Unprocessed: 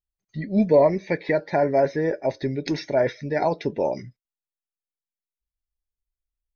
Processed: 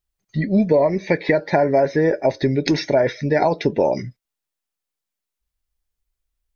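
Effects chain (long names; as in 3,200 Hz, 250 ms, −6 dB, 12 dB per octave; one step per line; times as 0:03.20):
downward compressor 6 to 1, threshold −22 dBFS, peak gain reduction 10 dB
level +9 dB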